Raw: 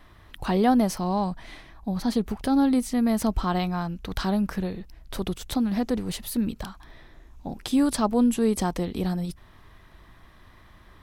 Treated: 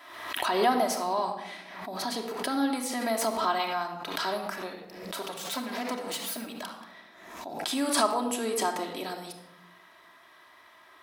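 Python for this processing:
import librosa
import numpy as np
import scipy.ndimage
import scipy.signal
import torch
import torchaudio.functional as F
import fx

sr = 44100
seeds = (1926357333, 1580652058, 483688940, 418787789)

y = fx.lower_of_two(x, sr, delay_ms=4.4, at=(5.21, 6.46))
y = scipy.signal.sosfilt(scipy.signal.butter(2, 610.0, 'highpass', fs=sr, output='sos'), y)
y = fx.room_shoebox(y, sr, seeds[0], volume_m3=3900.0, walls='furnished', distance_m=2.9)
y = fx.pre_swell(y, sr, db_per_s=52.0)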